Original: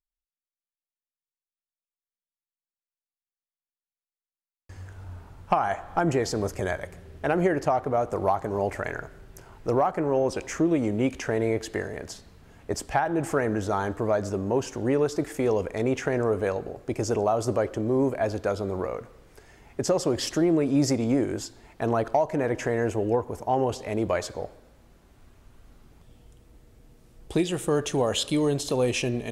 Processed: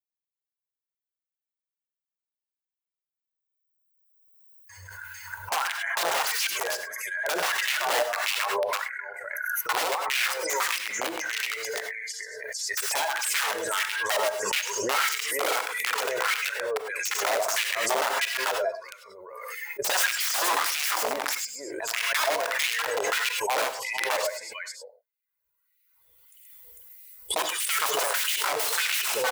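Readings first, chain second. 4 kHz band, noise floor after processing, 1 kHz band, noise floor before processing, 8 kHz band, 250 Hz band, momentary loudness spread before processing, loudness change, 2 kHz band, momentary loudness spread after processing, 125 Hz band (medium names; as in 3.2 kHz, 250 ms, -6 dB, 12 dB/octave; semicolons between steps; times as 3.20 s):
+9.5 dB, under -85 dBFS, +0.5 dB, under -85 dBFS, +9.5 dB, -20.0 dB, 11 LU, 0.0 dB, +10.0 dB, 12 LU, under -25 dB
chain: expander on every frequency bin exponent 2; treble shelf 2.1 kHz +11.5 dB; comb 2 ms, depth 55%; de-hum 150.6 Hz, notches 3; on a send: multi-tap echo 128/448 ms -7/-5.5 dB; on the sum: integer overflow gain 23 dB; LFO high-pass sine 1.6 Hz 560–2500 Hz; gated-style reverb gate 120 ms rising, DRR 10 dB; swell ahead of each attack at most 28 dB/s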